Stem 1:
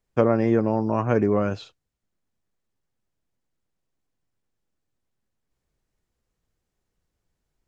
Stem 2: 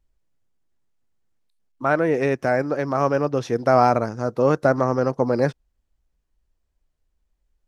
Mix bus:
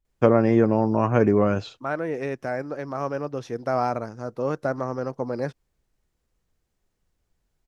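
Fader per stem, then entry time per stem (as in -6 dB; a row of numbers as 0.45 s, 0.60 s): +2.0 dB, -8.0 dB; 0.05 s, 0.00 s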